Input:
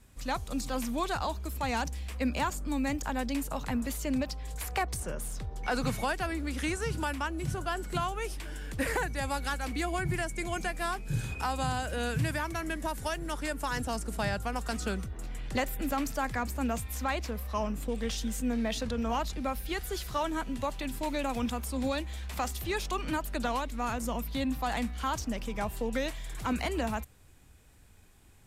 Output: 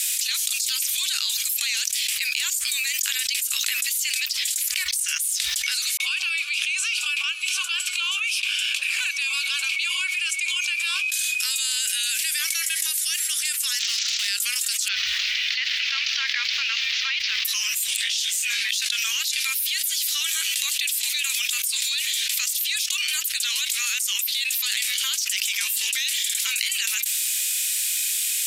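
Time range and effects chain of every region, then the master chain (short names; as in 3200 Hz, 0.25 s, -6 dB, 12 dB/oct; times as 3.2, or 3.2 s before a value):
5.97–11.12 vowel filter a + three bands offset in time mids, highs, lows 30/150 ms, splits 280/850 Hz
13.79–14.28 CVSD 32 kbps + hard clip -32.5 dBFS
14.88–17.45 CVSD 32 kbps + requantised 10-bit, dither none + air absorption 240 m
17.97–18.69 LPF 3400 Hz 6 dB/oct + detuned doubles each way 37 cents
whole clip: inverse Chebyshev high-pass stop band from 740 Hz, stop band 60 dB; high shelf 4100 Hz +7 dB; fast leveller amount 100%; gain +7 dB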